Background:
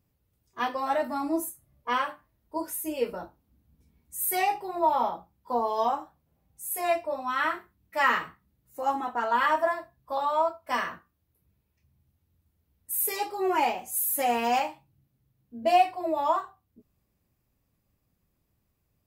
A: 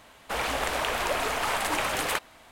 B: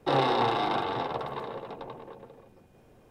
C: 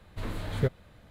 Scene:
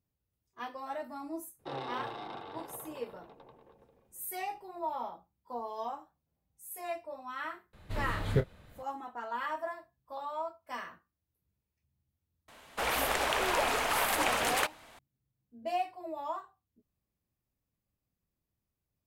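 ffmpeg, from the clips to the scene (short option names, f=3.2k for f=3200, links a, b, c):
-filter_complex "[0:a]volume=-12dB[a];[3:a]asplit=2[b][c];[c]adelay=28,volume=-10.5dB[d];[b][d]amix=inputs=2:normalize=0[e];[1:a]lowshelf=f=150:g=-3.5[f];[2:a]atrim=end=3.1,asetpts=PTS-STARTPTS,volume=-15dB,afade=t=in:d=0.004:c=hsin,afade=t=out:st=3.096:d=0.004:c=hsin,adelay=1590[g];[e]atrim=end=1.1,asetpts=PTS-STARTPTS,volume=-1.5dB,afade=t=in:d=0.004:c=hsin,afade=t=out:st=1.096:d=0.004:c=hsin,adelay=7730[h];[f]atrim=end=2.51,asetpts=PTS-STARTPTS,volume=-2dB,afade=t=in:d=0.004:c=hsin,afade=t=out:st=2.506:d=0.004:c=hsin,adelay=12480[i];[a][g][h][i]amix=inputs=4:normalize=0"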